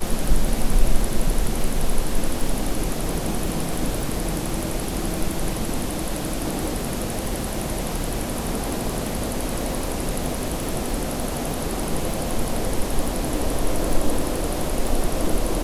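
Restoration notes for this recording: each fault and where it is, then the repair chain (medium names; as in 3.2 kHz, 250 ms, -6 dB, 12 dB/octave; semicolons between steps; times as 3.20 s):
crackle 27 per s -24 dBFS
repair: de-click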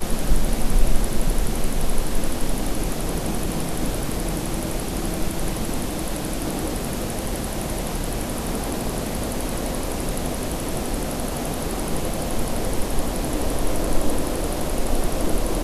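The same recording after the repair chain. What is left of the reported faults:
nothing left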